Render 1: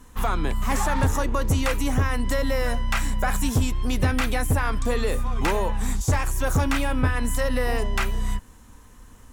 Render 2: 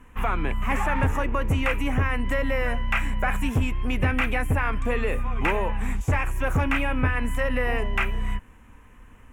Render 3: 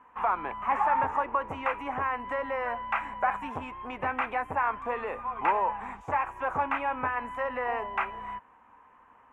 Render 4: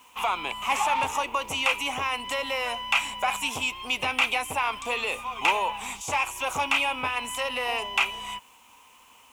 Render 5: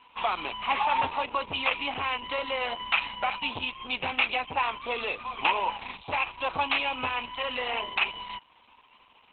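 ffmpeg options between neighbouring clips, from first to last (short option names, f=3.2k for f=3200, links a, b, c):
-af "highshelf=f=3.3k:t=q:w=3:g=-9.5,volume=-1.5dB"
-af "bandpass=f=920:t=q:w=2.6:csg=0,volume=5.5dB"
-af "aexciter=amount=12.7:drive=9.7:freq=2.8k"
-ar 48000 -c:a libopus -b:a 8k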